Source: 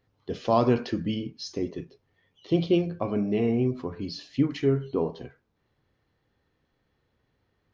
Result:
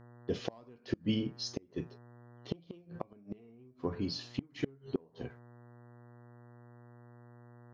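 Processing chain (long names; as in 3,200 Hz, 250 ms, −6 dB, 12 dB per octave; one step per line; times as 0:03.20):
noise gate −51 dBFS, range −30 dB
hum with harmonics 120 Hz, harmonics 16, −54 dBFS −6 dB per octave
in parallel at −6 dB: hard clipping −19 dBFS, distortion −13 dB
on the sum: gate with flip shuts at −15 dBFS, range −31 dB
level −5 dB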